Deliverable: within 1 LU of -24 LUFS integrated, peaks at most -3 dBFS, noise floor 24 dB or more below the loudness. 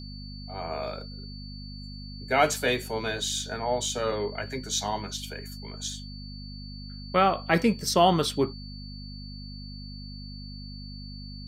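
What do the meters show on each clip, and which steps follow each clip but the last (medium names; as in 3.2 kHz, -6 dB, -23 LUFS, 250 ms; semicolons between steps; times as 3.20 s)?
hum 50 Hz; highest harmonic 250 Hz; hum level -38 dBFS; steady tone 4.5 kHz; tone level -45 dBFS; loudness -27.5 LUFS; peak level -6.5 dBFS; loudness target -24.0 LUFS
-> de-hum 50 Hz, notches 5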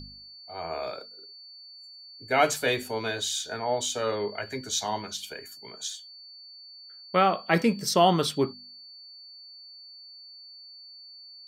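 hum not found; steady tone 4.5 kHz; tone level -45 dBFS
-> band-stop 4.5 kHz, Q 30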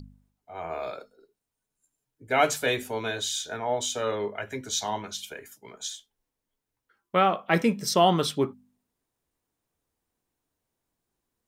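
steady tone not found; loudness -27.0 LUFS; peak level -6.5 dBFS; loudness target -24.0 LUFS
-> trim +3 dB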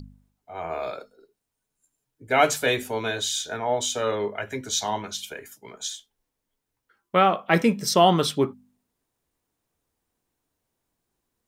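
loudness -24.0 LUFS; peak level -3.5 dBFS; noise floor -82 dBFS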